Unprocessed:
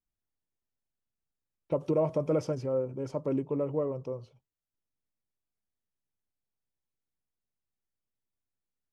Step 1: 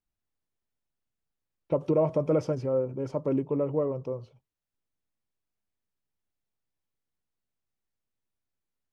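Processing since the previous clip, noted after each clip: treble shelf 4.9 kHz -8 dB; trim +3 dB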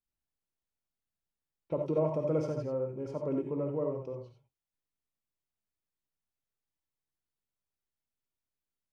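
gated-style reverb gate 110 ms rising, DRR 3 dB; trim -7 dB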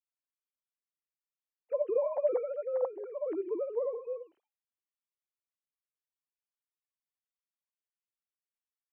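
formants replaced by sine waves

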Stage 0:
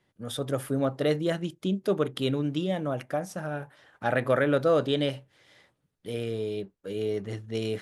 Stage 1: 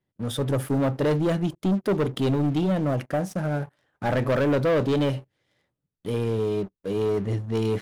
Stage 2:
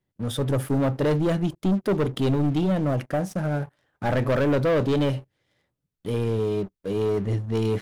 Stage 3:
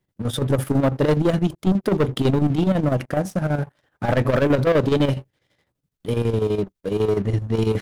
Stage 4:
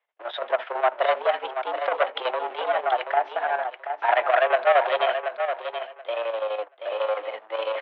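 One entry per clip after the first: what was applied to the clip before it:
bass shelf 470 Hz +9 dB; waveshaping leveller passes 3; trim -9 dB
bass shelf 70 Hz +6 dB
square tremolo 12 Hz, depth 60%, duty 65%; trim +5 dB
mistuned SSB +110 Hz 540–3100 Hz; feedback delay 730 ms, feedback 17%, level -8 dB; trim +3.5 dB

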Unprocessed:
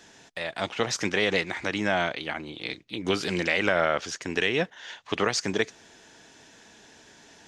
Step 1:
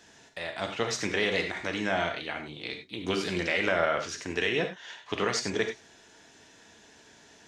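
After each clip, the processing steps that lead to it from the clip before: gated-style reverb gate 120 ms flat, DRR 4 dB; trim -4 dB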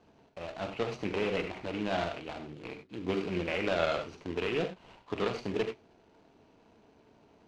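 median filter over 25 samples; Chebyshev low-pass 4.8 kHz, order 2; dynamic bell 2.6 kHz, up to +6 dB, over -54 dBFS, Q 2.2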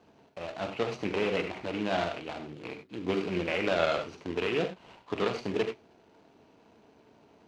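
high-pass 100 Hz 6 dB/octave; trim +2.5 dB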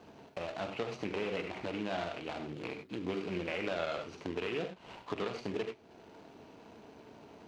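compression 2.5:1, threshold -45 dBFS, peak gain reduction 15.5 dB; trim +5.5 dB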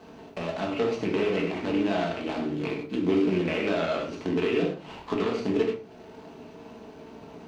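dynamic bell 290 Hz, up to +6 dB, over -52 dBFS, Q 1.9; simulated room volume 220 m³, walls furnished, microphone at 1.5 m; trim +4.5 dB

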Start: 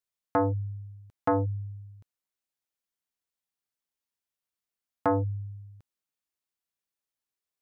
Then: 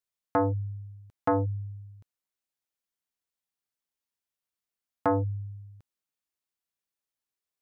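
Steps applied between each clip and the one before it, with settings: no audible change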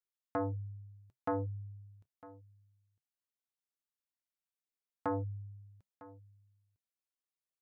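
flange 0.33 Hz, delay 2.3 ms, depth 2.1 ms, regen -78%; delay 954 ms -19.5 dB; trim -5 dB

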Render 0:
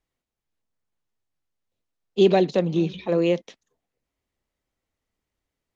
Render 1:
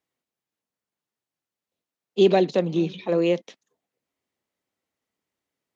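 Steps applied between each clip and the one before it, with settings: high-pass 160 Hz 12 dB/octave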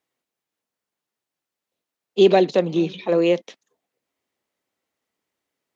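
tone controls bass -5 dB, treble -1 dB; trim +4 dB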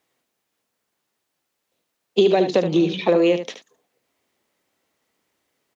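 compression 12:1, threshold -22 dBFS, peak gain reduction 13.5 dB; delay 74 ms -9 dB; trim +8.5 dB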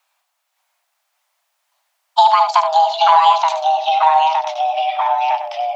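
ever faster or slower copies 563 ms, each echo -2 st, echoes 3; frequency shift +480 Hz; trim +4.5 dB

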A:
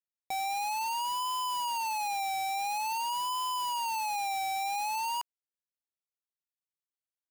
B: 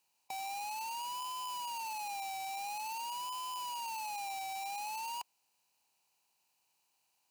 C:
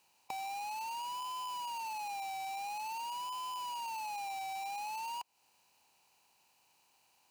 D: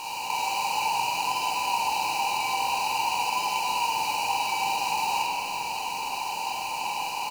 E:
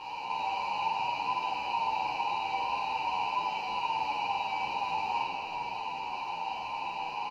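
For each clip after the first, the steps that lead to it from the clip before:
spectral levelling over time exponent 0.6; high-pass 71 Hz; trim -9 dB
treble shelf 4.4 kHz -6.5 dB; compression 5:1, threshold -52 dBFS, peak gain reduction 11.5 dB; trim +10.5 dB
spectral levelling over time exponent 0.2; doubling 47 ms -4.5 dB; reverberation RT60 2.6 s, pre-delay 7 ms, DRR -6 dB
distance through air 270 m; endless flanger 9.8 ms -2 Hz

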